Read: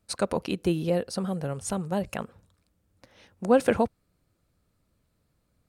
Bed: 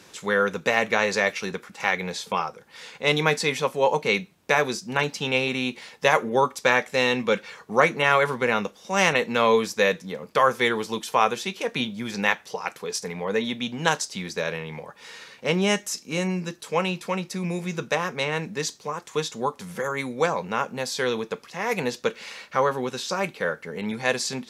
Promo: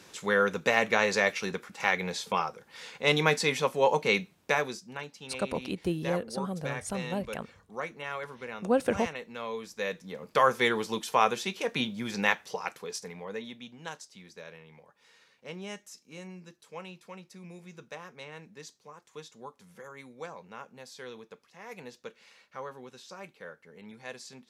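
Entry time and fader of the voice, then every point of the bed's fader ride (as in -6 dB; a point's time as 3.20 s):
5.20 s, -5.0 dB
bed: 4.40 s -3 dB
5.08 s -17.5 dB
9.54 s -17.5 dB
10.36 s -3.5 dB
12.54 s -3.5 dB
13.82 s -18.5 dB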